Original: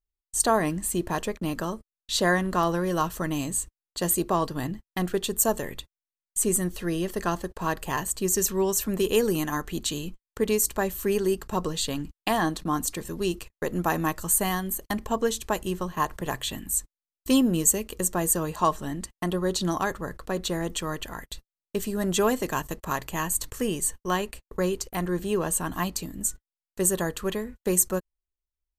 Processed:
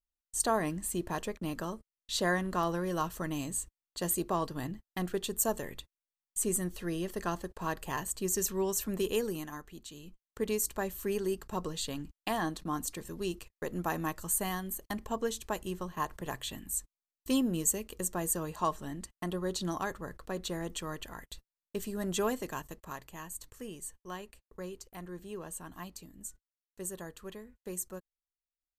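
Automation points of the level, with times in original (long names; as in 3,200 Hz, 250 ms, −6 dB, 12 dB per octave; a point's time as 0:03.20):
0:09.05 −7 dB
0:09.87 −19 dB
0:10.41 −8 dB
0:22.26 −8 dB
0:23.18 −16 dB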